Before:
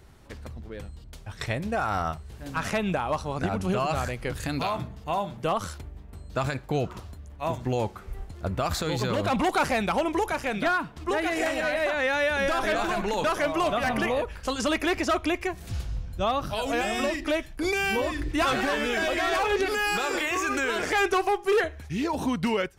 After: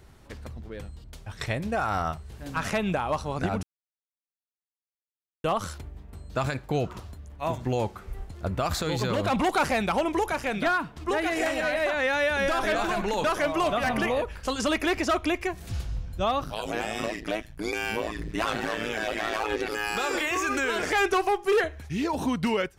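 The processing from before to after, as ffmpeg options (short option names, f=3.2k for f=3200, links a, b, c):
-filter_complex "[0:a]asettb=1/sr,asplit=3[a][b][c];[a]atrim=end=16.444[d];[b]atrim=start=16.44:end=19.97,asetpts=PTS-STARTPTS,afade=t=in:d=0.004:c=qsin,afade=t=out:st=3.526:d=0.004:c=qsin,tremolo=f=110:d=0.947[e];[c]atrim=start=19.966[f];[d][e]acrossfade=d=0.004:c1=hsin:c2=qsin[g];[g][f]acrossfade=d=0.004:c1=qsin:c2=hsin,asplit=3[h][i][j];[h]atrim=end=3.63,asetpts=PTS-STARTPTS,afade=t=out:st=3.626:d=0.004:c=hsin[k];[i]atrim=start=3.63:end=5.44,asetpts=PTS-STARTPTS,volume=0[l];[j]atrim=start=5.44,asetpts=PTS-STARTPTS,afade=t=in:d=0.004:c=hsin[m];[k][l][m]concat=n=3:v=0:a=1"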